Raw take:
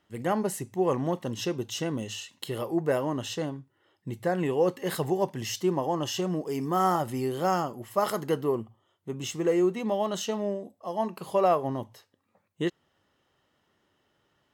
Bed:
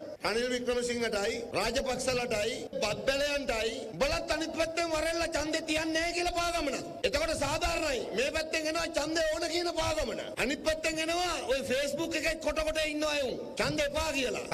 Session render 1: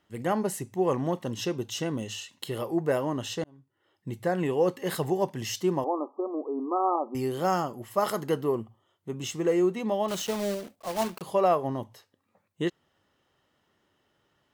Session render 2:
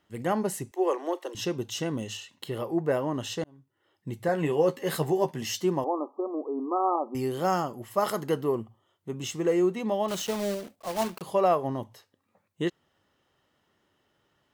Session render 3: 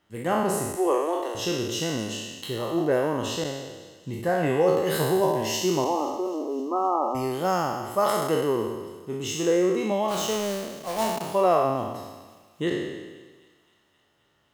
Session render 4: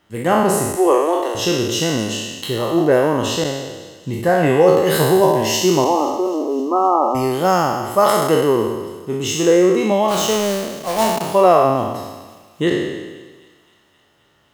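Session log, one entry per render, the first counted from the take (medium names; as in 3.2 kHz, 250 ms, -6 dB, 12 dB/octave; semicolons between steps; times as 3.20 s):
3.44–4.08 s: fade in; 5.84–7.15 s: brick-wall FIR band-pass 230–1300 Hz; 10.08–11.24 s: block-companded coder 3-bit
0.71–1.35 s: steep high-pass 310 Hz 72 dB/octave; 2.17–3.14 s: peaking EQ 9.5 kHz -6 dB 2.4 oct; 4.27–5.65 s: doubling 13 ms -6 dB
spectral sustain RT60 1.34 s; feedback echo behind a high-pass 261 ms, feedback 70%, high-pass 2.3 kHz, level -19.5 dB
trim +9 dB; peak limiter -1 dBFS, peak gain reduction 1 dB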